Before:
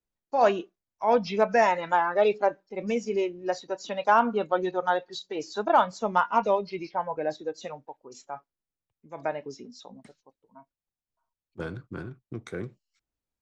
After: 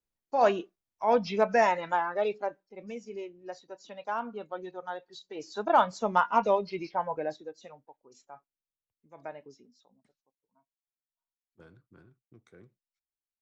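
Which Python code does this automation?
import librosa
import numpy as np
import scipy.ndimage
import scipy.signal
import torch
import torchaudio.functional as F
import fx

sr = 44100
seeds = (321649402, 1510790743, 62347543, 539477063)

y = fx.gain(x, sr, db=fx.line((1.68, -2.0), (2.9, -12.5), (5.0, -12.5), (5.81, -1.0), (7.14, -1.0), (7.56, -11.0), (9.45, -11.0), (9.88, -20.0)))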